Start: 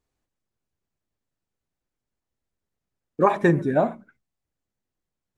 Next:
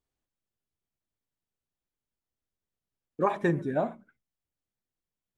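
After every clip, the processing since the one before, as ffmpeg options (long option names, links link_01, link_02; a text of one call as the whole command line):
ffmpeg -i in.wav -af "equalizer=frequency=3200:width=4.6:gain=3.5,volume=-7.5dB" out.wav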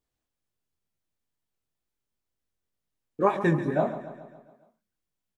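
ffmpeg -i in.wav -filter_complex "[0:a]flanger=delay=19:depth=6.8:speed=2.1,asplit=2[link_01][link_02];[link_02]aecho=0:1:139|278|417|556|695|834:0.237|0.133|0.0744|0.0416|0.0233|0.0131[link_03];[link_01][link_03]amix=inputs=2:normalize=0,volume=5.5dB" out.wav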